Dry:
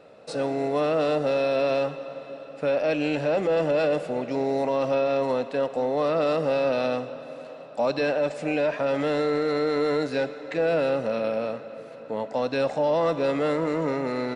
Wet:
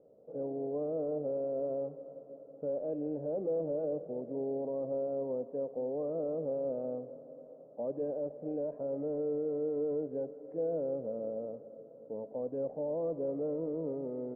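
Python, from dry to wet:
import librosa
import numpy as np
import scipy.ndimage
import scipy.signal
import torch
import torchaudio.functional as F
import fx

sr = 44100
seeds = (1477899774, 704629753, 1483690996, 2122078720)

y = fx.ladder_lowpass(x, sr, hz=610.0, resonance_pct=35)
y = y * librosa.db_to_amplitude(-5.0)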